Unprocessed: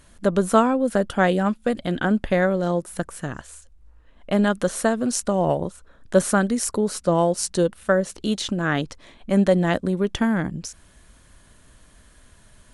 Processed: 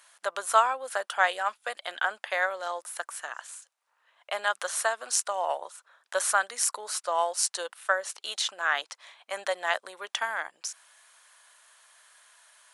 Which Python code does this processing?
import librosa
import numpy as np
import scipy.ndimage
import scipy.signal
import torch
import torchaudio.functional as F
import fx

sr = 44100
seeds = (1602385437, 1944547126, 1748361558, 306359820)

y = scipy.signal.sosfilt(scipy.signal.butter(4, 780.0, 'highpass', fs=sr, output='sos'), x)